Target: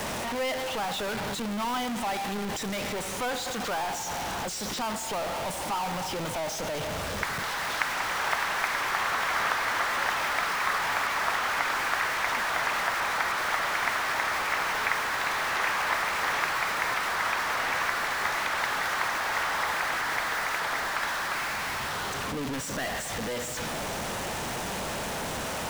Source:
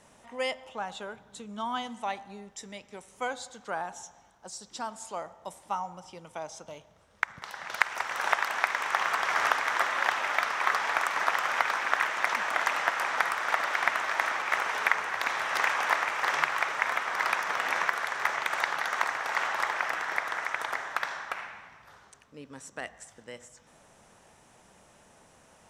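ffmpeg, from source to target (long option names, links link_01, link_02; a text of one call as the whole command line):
ffmpeg -i in.wav -filter_complex "[0:a]aeval=exprs='val(0)+0.5*0.1*sgn(val(0))':channel_layout=same,acrossover=split=170|1200|5300[link_01][link_02][link_03][link_04];[link_04]alimiter=level_in=3dB:limit=-24dB:level=0:latency=1:release=132,volume=-3dB[link_05];[link_01][link_02][link_03][link_05]amix=inputs=4:normalize=0,volume=-6dB" out.wav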